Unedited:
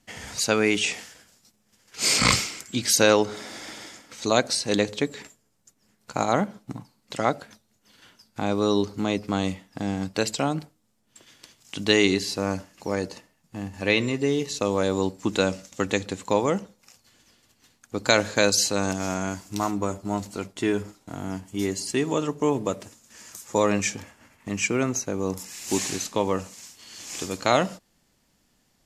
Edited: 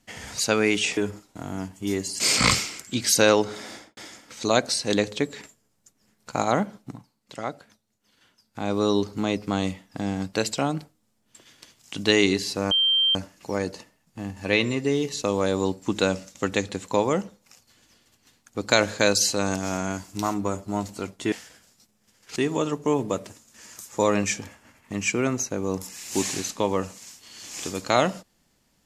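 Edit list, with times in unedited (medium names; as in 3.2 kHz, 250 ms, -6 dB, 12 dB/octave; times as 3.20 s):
0.97–2.01 s: swap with 20.69–21.92 s
3.51–3.78 s: studio fade out
6.60–8.56 s: dip -8 dB, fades 0.43 s quadratic
12.52 s: add tone 3.15 kHz -17.5 dBFS 0.44 s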